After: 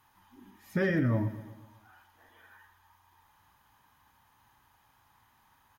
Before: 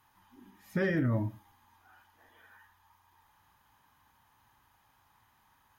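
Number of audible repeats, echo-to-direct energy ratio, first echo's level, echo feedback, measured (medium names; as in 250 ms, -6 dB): 4, -13.5 dB, -15.0 dB, 55%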